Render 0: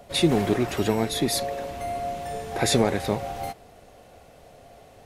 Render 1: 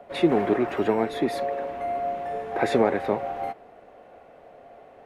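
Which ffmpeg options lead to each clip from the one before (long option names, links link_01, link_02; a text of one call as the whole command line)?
ffmpeg -i in.wav -filter_complex "[0:a]acrossover=split=230 2400:gain=0.178 1 0.0794[link_01][link_02][link_03];[link_01][link_02][link_03]amix=inputs=3:normalize=0,volume=2.5dB" out.wav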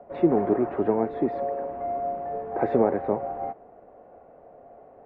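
ffmpeg -i in.wav -af "lowpass=1000" out.wav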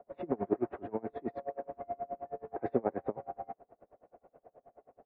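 ffmpeg -i in.wav -af "aeval=exprs='val(0)*pow(10,-31*(0.5-0.5*cos(2*PI*9.4*n/s))/20)':channel_layout=same,volume=-4.5dB" out.wav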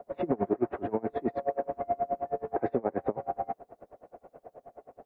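ffmpeg -i in.wav -af "alimiter=level_in=1dB:limit=-24dB:level=0:latency=1:release=211,volume=-1dB,volume=9dB" out.wav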